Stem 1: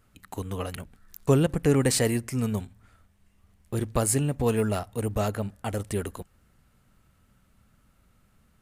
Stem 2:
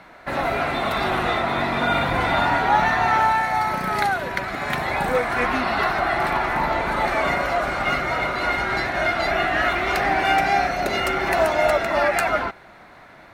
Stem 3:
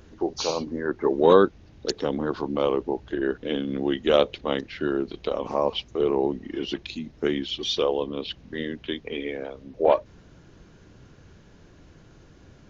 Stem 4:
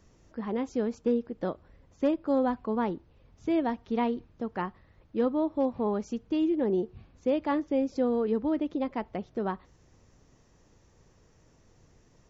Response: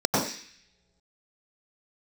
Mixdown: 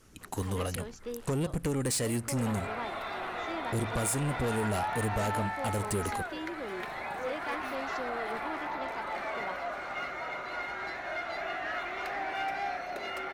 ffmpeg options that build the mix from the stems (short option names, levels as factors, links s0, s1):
-filter_complex "[0:a]lowpass=f=12000:w=0.5412,lowpass=f=12000:w=1.3066,volume=1.33,asplit=2[s0][s1];[1:a]bass=f=250:g=-12,treble=f=4000:g=-5,adelay=2100,volume=0.224[s2];[2:a]acompressor=threshold=0.0224:ratio=4,aeval=exprs='0.0141*(abs(mod(val(0)/0.0141+3,4)-2)-1)':c=same,volume=0.211[s3];[3:a]highpass=f=1400:p=1,volume=0.891[s4];[s1]apad=whole_len=559977[s5];[s3][s5]sidechaincompress=threshold=0.0631:ratio=8:attack=16:release=702[s6];[s0][s4]amix=inputs=2:normalize=0,highshelf=f=5500:g=7,acompressor=threshold=0.0794:ratio=12,volume=1[s7];[s2][s6][s7]amix=inputs=3:normalize=0,asoftclip=type=tanh:threshold=0.0531"